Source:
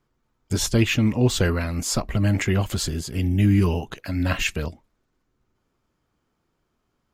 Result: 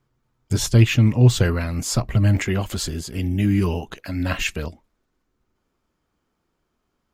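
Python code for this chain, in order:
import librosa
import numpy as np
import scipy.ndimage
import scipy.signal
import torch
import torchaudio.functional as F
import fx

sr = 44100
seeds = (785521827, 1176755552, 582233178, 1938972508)

y = fx.peak_eq(x, sr, hz=120.0, db=fx.steps((0.0, 9.5), (2.37, -6.0)), octaves=0.44)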